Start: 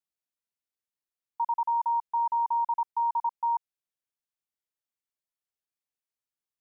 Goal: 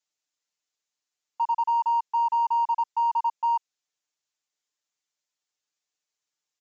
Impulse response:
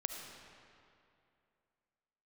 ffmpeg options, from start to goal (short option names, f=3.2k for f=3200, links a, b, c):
-filter_complex "[0:a]aemphasis=mode=production:type=bsi,aecho=1:1:6.7:0.93,asplit=2[a][b];[b]asoftclip=type=tanh:threshold=-34dB,volume=-9dB[c];[a][c]amix=inputs=2:normalize=0,aresample=16000,aresample=44100"